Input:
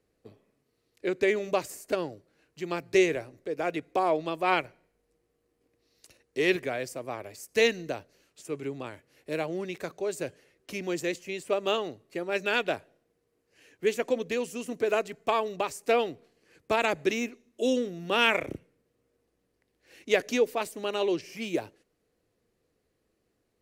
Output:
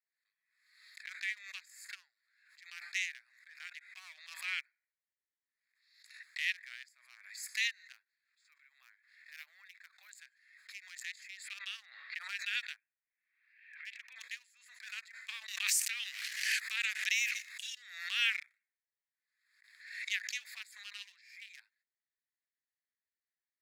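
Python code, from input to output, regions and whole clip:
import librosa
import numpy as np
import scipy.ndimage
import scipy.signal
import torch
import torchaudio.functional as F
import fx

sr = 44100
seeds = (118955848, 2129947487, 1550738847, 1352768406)

y = fx.chain(x, sr, fx.resample_bad(factor=3, down='none', up='hold'),
    fx.high_shelf(hz=7000.0, db=-10.0), at=(7.94, 10.11))
y = fx.chain(y, sr, fx.lowpass(hz=3700.0, slope=24),
    fx.hum_notches(base_hz=60, count=9),
    fx.band_squash(depth_pct=100), at=(11.48, 12.19))
y = fx.chain(y, sr, fx.ladder_lowpass(hz=3000.0, resonance_pct=60),
    fx.pre_swell(db_per_s=77.0), at=(12.76, 14.16))
y = fx.chain(y, sr, fx.highpass(hz=740.0, slope=6),
    fx.env_flatten(amount_pct=100), at=(15.48, 17.75))
y = fx.wiener(y, sr, points=15)
y = scipy.signal.sosfilt(scipy.signal.ellip(4, 1.0, 80, 1800.0, 'highpass', fs=sr, output='sos'), y)
y = fx.pre_swell(y, sr, db_per_s=68.0)
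y = y * 10.0 ** (-4.0 / 20.0)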